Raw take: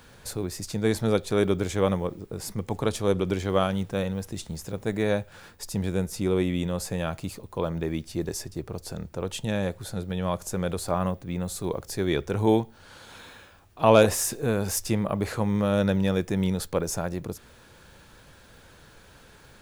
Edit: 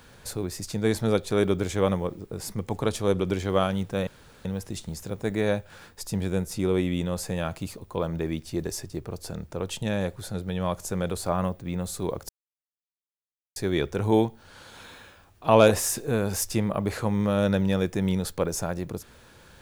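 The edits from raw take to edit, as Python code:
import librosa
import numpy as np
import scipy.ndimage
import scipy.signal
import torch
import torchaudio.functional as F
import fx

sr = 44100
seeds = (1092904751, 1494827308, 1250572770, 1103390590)

y = fx.edit(x, sr, fx.insert_room_tone(at_s=4.07, length_s=0.38),
    fx.insert_silence(at_s=11.91, length_s=1.27), tone=tone)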